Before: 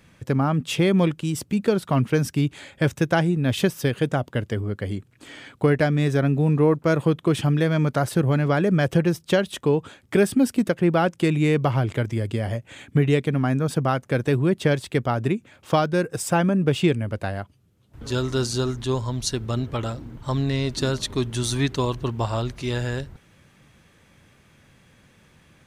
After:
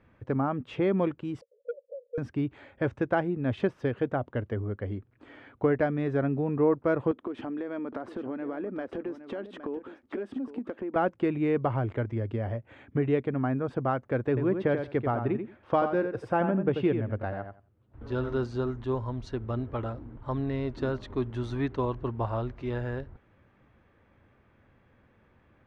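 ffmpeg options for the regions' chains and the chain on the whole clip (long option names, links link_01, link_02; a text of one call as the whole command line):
ffmpeg -i in.wav -filter_complex "[0:a]asettb=1/sr,asplit=3[link_01][link_02][link_03];[link_01]atrim=end=1.414[link_04];[link_02]atrim=start=1.41:end=2.18,asetpts=PTS-STARTPTS,afade=type=in:duration=0.004:curve=qsin,afade=type=out:start_time=0.766:duration=0.004:curve=qsin,asuperpass=centerf=520:order=8:qfactor=5.3,asoftclip=type=hard:threshold=-23.5dB[link_05];[link_03]atrim=start=2.176[link_06];[link_04][link_05]acrossfade=duration=0.004:curve1=hsin:curve2=qsin[link_07];[link_07][link_06]acrossfade=duration=0.004:curve1=qsin:curve2=hsin,asettb=1/sr,asplit=3[link_08][link_09][link_10];[link_08]atrim=end=7.114[link_11];[link_09]atrim=start=7.11:end=10.96,asetpts=PTS-STARTPTS,afade=type=in:duration=0.004:curve=qsin,afade=type=out:start_time=3.846:duration=0.004:curve=qsin,lowshelf=frequency=190:width_type=q:width=3:gain=-9,acompressor=threshold=-25dB:ratio=12:attack=3.2:release=140:knee=1:detection=peak,aecho=1:1:814:0.251,atrim=end_sample=169785[link_12];[link_10]atrim=start=10.956[link_13];[link_11][link_12]acrossfade=duration=0.004:curve1=hsin:curve2=qsin[link_14];[link_14][link_13]acrossfade=duration=0.004:curve1=qsin:curve2=hsin,asettb=1/sr,asplit=3[link_15][link_16][link_17];[link_15]atrim=end=14.284[link_18];[link_16]atrim=start=14.28:end=18.37,asetpts=PTS-STARTPTS,afade=type=in:duration=0.004:curve=qsin,afade=type=out:start_time=4.086:duration=0.004:curve=qsin,equalizer=frequency=7400:width=5.6:gain=-10,asplit=2[link_19][link_20];[link_20]adelay=88,lowpass=frequency=4000:poles=1,volume=-7dB,asplit=2[link_21][link_22];[link_22]adelay=88,lowpass=frequency=4000:poles=1,volume=0.17,asplit=2[link_23][link_24];[link_24]adelay=88,lowpass=frequency=4000:poles=1,volume=0.17[link_25];[link_19][link_21][link_23][link_25]amix=inputs=4:normalize=0,atrim=end_sample=180369[link_26];[link_17]atrim=start=18.366[link_27];[link_18][link_26]acrossfade=duration=0.004:curve1=hsin:curve2=qsin[link_28];[link_28][link_27]acrossfade=duration=0.004:curve1=qsin:curve2=hsin,lowpass=1500,equalizer=frequency=160:width_type=o:width=0.47:gain=-10.5,volume=-4dB" out.wav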